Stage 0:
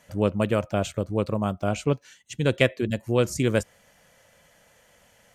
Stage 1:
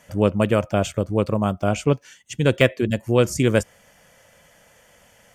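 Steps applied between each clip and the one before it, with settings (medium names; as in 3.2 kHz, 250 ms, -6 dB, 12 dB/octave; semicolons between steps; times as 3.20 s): de-esser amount 50%; band-stop 4 kHz, Q 8.5; trim +4.5 dB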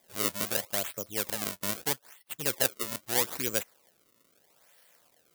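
decimation with a swept rate 31×, swing 160% 0.78 Hz; RIAA curve recording; trim -12.5 dB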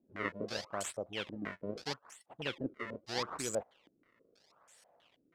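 self-modulated delay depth 0.071 ms; step-sequenced low-pass 6.2 Hz 290–7800 Hz; trim -3.5 dB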